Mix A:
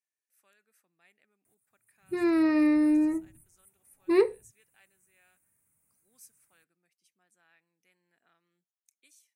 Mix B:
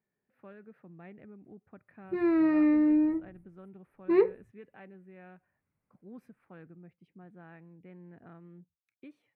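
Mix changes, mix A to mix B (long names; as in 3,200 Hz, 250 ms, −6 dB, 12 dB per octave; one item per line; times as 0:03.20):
speech: remove resonant band-pass 7,100 Hz, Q 0.91
master: add high-frequency loss of the air 440 metres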